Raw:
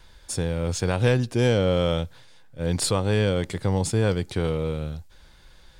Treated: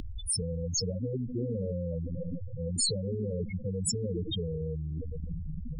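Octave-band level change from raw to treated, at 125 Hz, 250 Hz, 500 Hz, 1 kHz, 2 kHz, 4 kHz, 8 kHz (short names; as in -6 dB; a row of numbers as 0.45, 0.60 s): -8.5 dB, -8.0 dB, -11.0 dB, under -35 dB, -26.0 dB, -4.0 dB, 0.0 dB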